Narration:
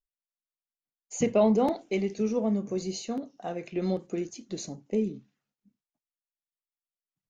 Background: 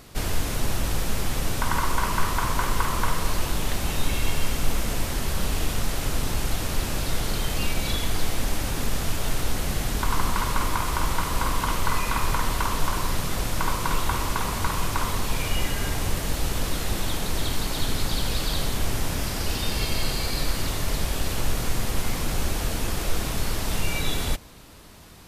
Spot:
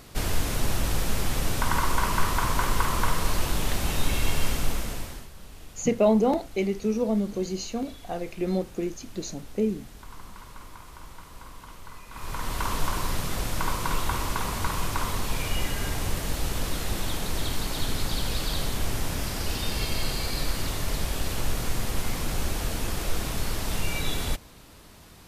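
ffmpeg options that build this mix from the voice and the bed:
ffmpeg -i stem1.wav -i stem2.wav -filter_complex "[0:a]adelay=4650,volume=2dB[link_01];[1:a]volume=17dB,afade=type=out:start_time=4.49:duration=0.8:silence=0.105925,afade=type=in:start_time=12.1:duration=0.61:silence=0.133352[link_02];[link_01][link_02]amix=inputs=2:normalize=0" out.wav

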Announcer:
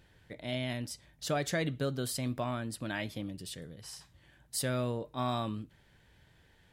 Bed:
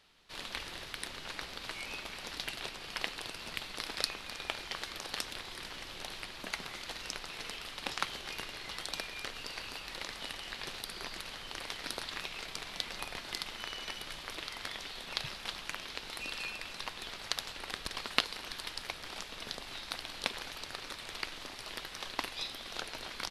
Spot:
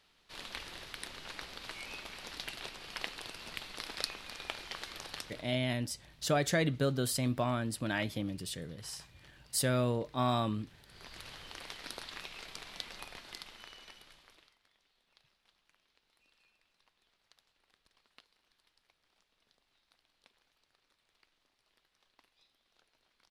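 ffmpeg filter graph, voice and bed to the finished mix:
ffmpeg -i stem1.wav -i stem2.wav -filter_complex "[0:a]adelay=5000,volume=2.5dB[link_01];[1:a]volume=14dB,afade=type=out:start_time=5:duration=0.6:silence=0.112202,afade=type=in:start_time=10.85:duration=0.41:silence=0.141254,afade=type=out:start_time=12.78:duration=1.8:silence=0.0446684[link_02];[link_01][link_02]amix=inputs=2:normalize=0" out.wav

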